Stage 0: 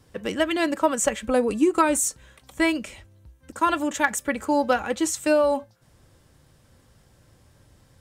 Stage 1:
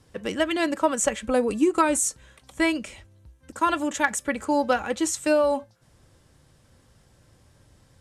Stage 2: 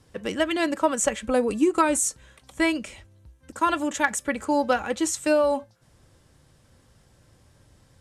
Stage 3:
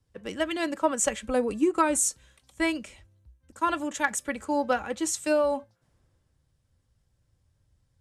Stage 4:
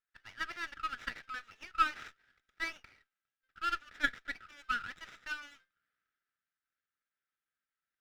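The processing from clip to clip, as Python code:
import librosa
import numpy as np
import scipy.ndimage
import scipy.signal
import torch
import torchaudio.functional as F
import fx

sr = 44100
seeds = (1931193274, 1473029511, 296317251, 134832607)

y1 = scipy.signal.sosfilt(scipy.signal.ellip(4, 1.0, 40, 12000.0, 'lowpass', fs=sr, output='sos'), x)
y2 = y1
y3 = fx.band_widen(y2, sr, depth_pct=40)
y3 = y3 * 10.0 ** (-4.0 / 20.0)
y4 = scipy.signal.medfilt(y3, 15)
y4 = fx.brickwall_bandpass(y4, sr, low_hz=1200.0, high_hz=4000.0)
y4 = fx.running_max(y4, sr, window=5)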